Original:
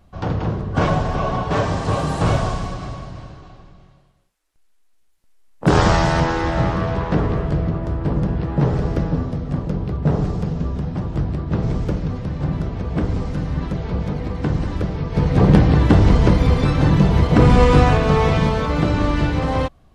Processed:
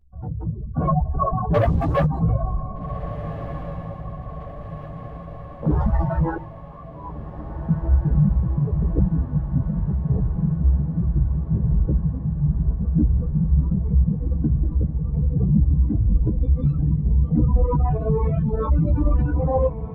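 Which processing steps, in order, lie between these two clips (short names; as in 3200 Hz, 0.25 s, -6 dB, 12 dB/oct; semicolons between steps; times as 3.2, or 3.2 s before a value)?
spectral contrast raised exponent 2.5; reverb removal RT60 1.3 s; AGC; limiter -7 dBFS, peak gain reduction 6 dB; 1.54–2.05 sample leveller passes 2; 6.36–7.69 double band-pass 1600 Hz, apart 1.3 oct; chorus voices 6, 0.92 Hz, delay 16 ms, depth 3 ms; diffused feedback echo 1.646 s, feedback 63%, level -11 dB; gain -2.5 dB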